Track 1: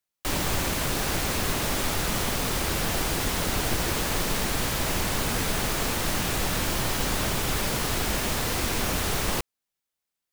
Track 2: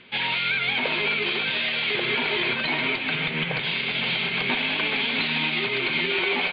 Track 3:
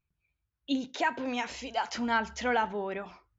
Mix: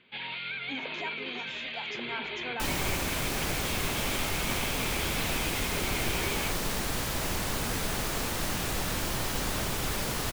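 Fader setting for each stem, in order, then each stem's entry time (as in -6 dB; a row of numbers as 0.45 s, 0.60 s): -4.5 dB, -12.0 dB, -11.5 dB; 2.35 s, 0.00 s, 0.00 s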